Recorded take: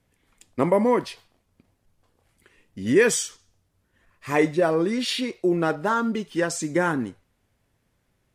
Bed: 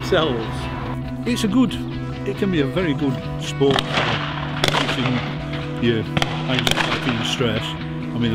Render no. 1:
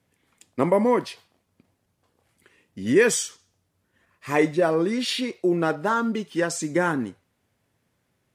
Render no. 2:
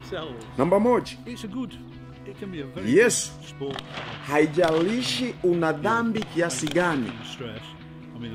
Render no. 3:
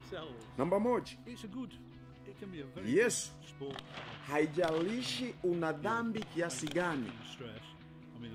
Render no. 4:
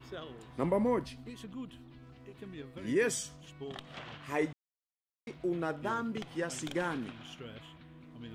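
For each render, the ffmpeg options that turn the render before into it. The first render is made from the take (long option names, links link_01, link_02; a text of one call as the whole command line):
ffmpeg -i in.wav -af "highpass=94" out.wav
ffmpeg -i in.wav -i bed.wav -filter_complex "[1:a]volume=-15dB[link_01];[0:a][link_01]amix=inputs=2:normalize=0" out.wav
ffmpeg -i in.wav -af "volume=-11.5dB" out.wav
ffmpeg -i in.wav -filter_complex "[0:a]asettb=1/sr,asplit=3[link_01][link_02][link_03];[link_01]atrim=end=0.634[link_04];[link_02]atrim=start=0.63:end=1.3,asetpts=PTS-STARTPTS,afade=type=in:duration=0.004:curve=qsin,afade=type=out:start_time=0.666:duration=0.004:curve=qsin,lowshelf=frequency=250:gain=7[link_05];[link_03]atrim=start=1.296[link_06];[link_04][link_05]acrossfade=duration=0.004:curve1=hsin:curve2=qsin[link_07];[link_07][link_06]acrossfade=duration=0.004:curve1=qsin:curve2=hsin,asplit=3[link_08][link_09][link_10];[link_08]atrim=end=4.53,asetpts=PTS-STARTPTS,afade=type=out:start_time=4.526:duration=0.004:curve=hsin[link_11];[link_09]atrim=start=4.53:end=5.27,asetpts=PTS-STARTPTS,volume=0[link_12];[link_10]atrim=start=5.27,asetpts=PTS-STARTPTS,afade=type=in:duration=0.004:curve=hsin[link_13];[link_11][link_12][link_13]concat=n=3:v=0:a=1" out.wav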